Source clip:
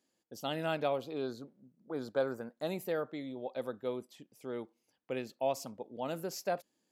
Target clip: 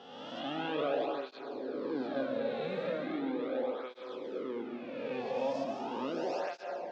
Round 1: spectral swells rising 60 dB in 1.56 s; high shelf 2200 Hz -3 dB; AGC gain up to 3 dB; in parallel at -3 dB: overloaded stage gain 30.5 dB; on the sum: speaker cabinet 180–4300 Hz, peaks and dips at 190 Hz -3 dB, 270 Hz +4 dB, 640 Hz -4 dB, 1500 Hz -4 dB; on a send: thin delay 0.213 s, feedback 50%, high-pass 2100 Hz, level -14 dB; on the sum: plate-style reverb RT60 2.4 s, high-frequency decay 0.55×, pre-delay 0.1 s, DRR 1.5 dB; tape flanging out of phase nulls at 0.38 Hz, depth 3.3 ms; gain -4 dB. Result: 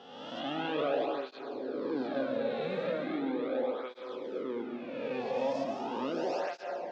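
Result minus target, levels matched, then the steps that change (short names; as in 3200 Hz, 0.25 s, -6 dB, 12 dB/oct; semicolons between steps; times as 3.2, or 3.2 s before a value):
overloaded stage: distortion -5 dB
change: overloaded stage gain 40 dB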